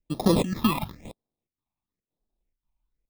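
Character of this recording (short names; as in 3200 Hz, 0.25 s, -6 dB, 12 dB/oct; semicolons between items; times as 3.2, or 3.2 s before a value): aliases and images of a low sample rate 1500 Hz, jitter 0%; chopped level 1.9 Hz, depth 65%, duty 80%; phasing stages 6, 1 Hz, lowest notch 450–2300 Hz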